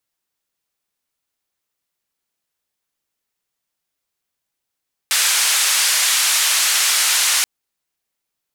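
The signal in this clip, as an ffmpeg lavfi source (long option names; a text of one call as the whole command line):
ffmpeg -f lavfi -i "anoisesrc=color=white:duration=2.33:sample_rate=44100:seed=1,highpass=frequency=1300,lowpass=frequency=9800,volume=-7.6dB" out.wav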